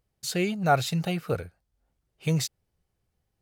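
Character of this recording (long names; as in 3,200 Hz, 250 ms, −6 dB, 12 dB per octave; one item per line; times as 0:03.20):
background noise floor −79 dBFS
spectral slope −5.0 dB per octave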